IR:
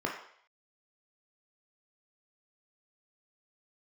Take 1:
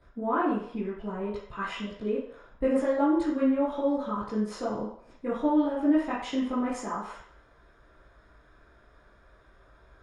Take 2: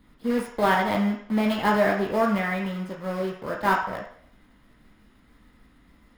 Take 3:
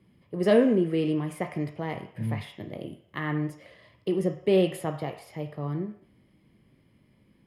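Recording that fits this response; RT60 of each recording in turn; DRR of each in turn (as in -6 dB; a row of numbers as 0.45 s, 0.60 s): 2; 0.60 s, 0.60 s, 0.60 s; -11.0 dB, -1.0 dB, 5.0 dB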